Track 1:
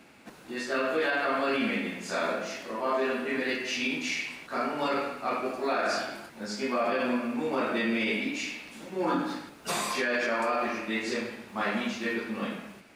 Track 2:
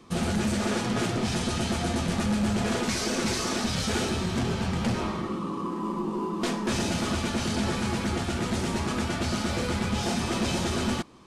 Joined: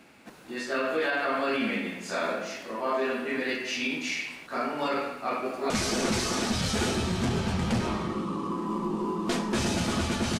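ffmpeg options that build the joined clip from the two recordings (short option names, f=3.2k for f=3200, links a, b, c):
-filter_complex "[0:a]apad=whole_dur=10.39,atrim=end=10.39,atrim=end=5.702[a];[1:a]atrim=start=2.838:end=7.53[b];[a][b]acrossfade=d=0.004:c1=hsin:c2=hsin,asplit=2[c][d];[d]afade=t=in:st=5.13:d=0.01,afade=t=out:st=5.7:d=0.01,aecho=0:1:390|780|1170|1560|1950:0.473151|0.189261|0.0757042|0.0302817|0.0121127[e];[c][e]amix=inputs=2:normalize=0"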